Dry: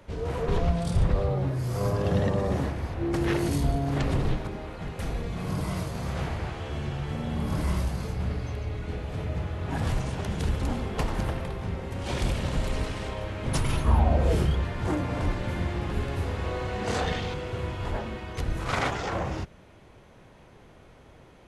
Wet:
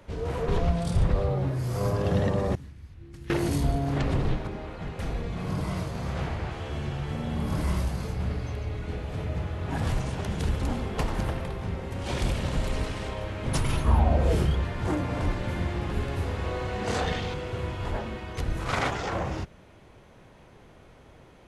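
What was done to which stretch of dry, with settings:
2.55–3.3 passive tone stack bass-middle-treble 6-0-2
3.92–6.51 high shelf 8800 Hz -9 dB

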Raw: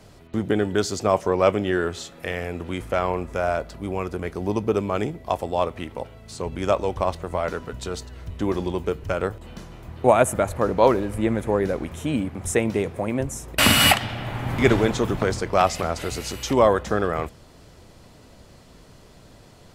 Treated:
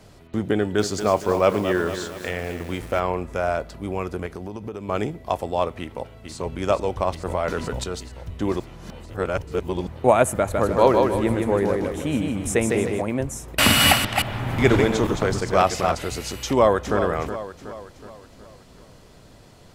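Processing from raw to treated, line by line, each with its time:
0.56–3 lo-fi delay 0.23 s, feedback 55%, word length 6-bit, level -9 dB
4.26–4.89 compressor 12:1, threshold -28 dBFS
5.8–6.35 echo throw 0.44 s, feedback 85%, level -7 dB
7.25–7.84 fast leveller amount 50%
8.6–9.87 reverse
10.38–13.02 feedback echo 0.155 s, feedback 41%, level -3.5 dB
13.71–15.95 reverse delay 0.17 s, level -5 dB
16.46–16.98 echo throw 0.37 s, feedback 50%, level -9.5 dB

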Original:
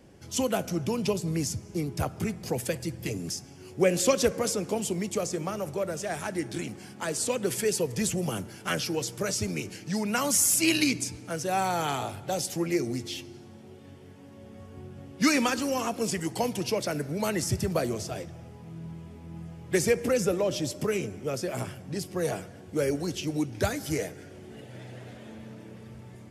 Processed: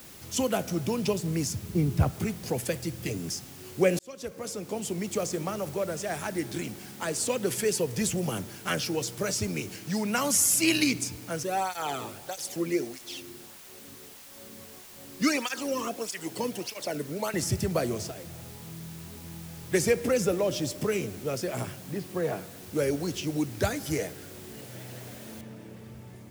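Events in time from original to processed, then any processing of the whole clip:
1.62–2.11 tone controls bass +9 dB, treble -9 dB
3.99–5.2 fade in
11.43–17.34 tape flanging out of phase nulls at 1.6 Hz, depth 1.5 ms
18.11–19.64 compressor, threshold -38 dBFS
21.76–22.63 BPF 110–2500 Hz
25.41 noise floor step -49 dB -64 dB

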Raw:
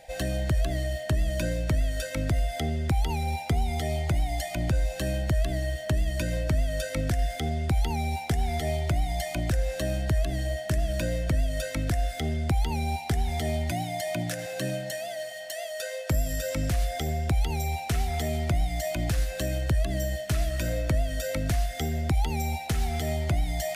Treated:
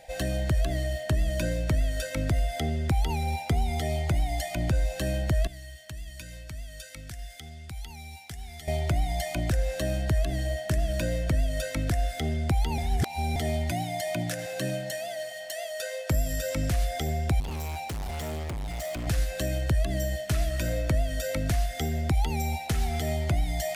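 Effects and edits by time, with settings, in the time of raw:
5.47–8.68 passive tone stack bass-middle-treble 5-5-5
12.78–13.36 reverse
17.4–19.07 hard clip -31 dBFS

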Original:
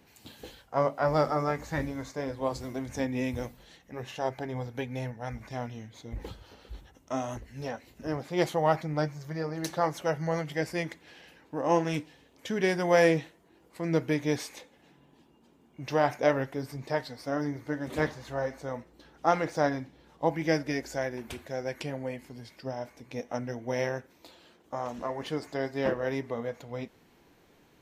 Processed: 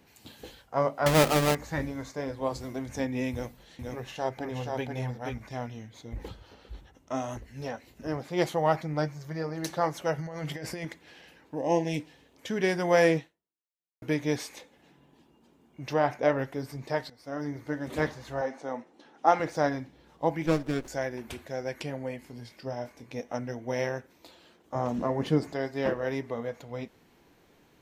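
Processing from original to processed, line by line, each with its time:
1.06–1.55 half-waves squared off
3.31–5.38 echo 0.479 s -3.5 dB
6.28–7.15 high shelf 7400 Hz -7 dB
10.18–10.85 negative-ratio compressor -36 dBFS
11.55–12 Butterworth band-stop 1300 Hz, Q 1.3
13.17–14.02 fade out exponential
15.93–16.39 high shelf 4700 Hz -9.5 dB
17.1–17.59 fade in, from -16 dB
18.41–19.4 speaker cabinet 250–9600 Hz, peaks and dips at 250 Hz +6 dB, 800 Hz +6 dB, 4500 Hz -4 dB, 8000 Hz -5 dB
20.46–20.88 running maximum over 17 samples
22.26–23.11 doubler 25 ms -9 dB
24.75–25.53 bell 160 Hz +12 dB 3 oct

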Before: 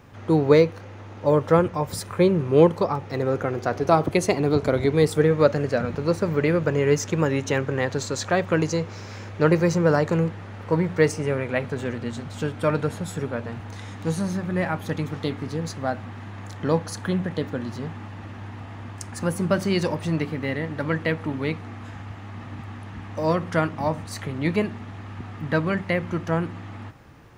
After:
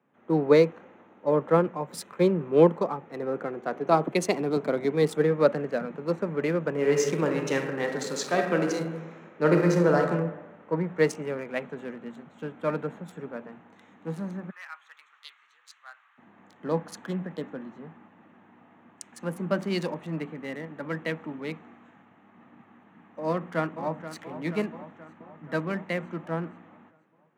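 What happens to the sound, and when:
6.7–10 reverb throw, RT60 1.4 s, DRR 1.5 dB
14.5–16.18 Chebyshev band-pass 1200–9300 Hz, order 3
23.28–24.21 echo throw 0.48 s, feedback 70%, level -9.5 dB
whole clip: Wiener smoothing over 9 samples; steep high-pass 160 Hz 36 dB/oct; three-band expander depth 40%; gain -5 dB

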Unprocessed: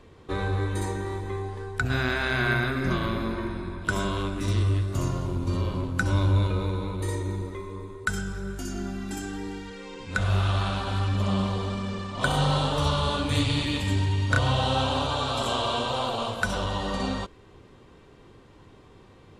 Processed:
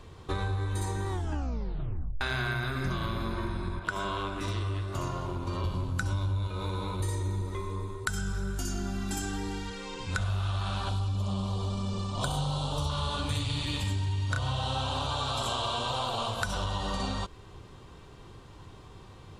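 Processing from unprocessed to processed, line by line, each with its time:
1.09 tape stop 1.12 s
3.79–5.64 tone controls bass -11 dB, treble -11 dB
6.48–7 low shelf 170 Hz -9 dB
10.89–12.9 bell 1800 Hz -13.5 dB 0.81 oct
whole clip: graphic EQ 250/500/2000 Hz -7/-6/-6 dB; compressor 6:1, threshold -34 dBFS; gain +6 dB

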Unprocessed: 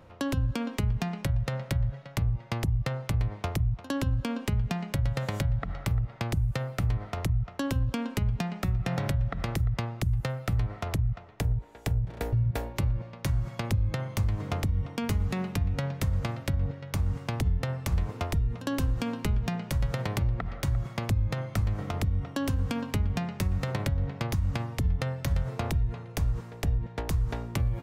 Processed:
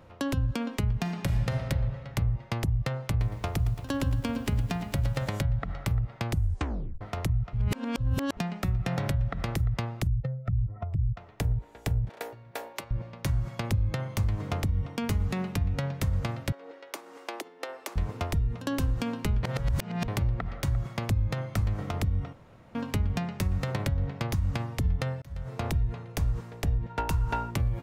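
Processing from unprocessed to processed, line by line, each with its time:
0.99–1.65 reverb throw, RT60 2.6 s, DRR 5 dB
3.1–5.29 lo-fi delay 0.112 s, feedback 80%, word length 8-bit, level -14 dB
6.34 tape stop 0.67 s
7.53–8.37 reverse
10.07–11.17 spectral contrast raised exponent 2.1
12.09–12.91 HPF 500 Hz
16.52–17.96 elliptic high-pass 320 Hz, stop band 80 dB
19.43–20.08 reverse
22.33–22.75 room tone
25.22–25.66 fade in
26.89–27.49 small resonant body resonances 940/1400/2700 Hz, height 13 dB -> 17 dB

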